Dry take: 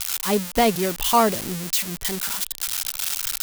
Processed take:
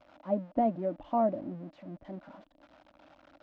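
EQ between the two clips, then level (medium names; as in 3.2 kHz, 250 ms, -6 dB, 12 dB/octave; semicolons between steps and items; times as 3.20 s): two resonant band-passes 420 Hz, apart 1 oct; distance through air 190 m; tilt EQ -2 dB/octave; 0.0 dB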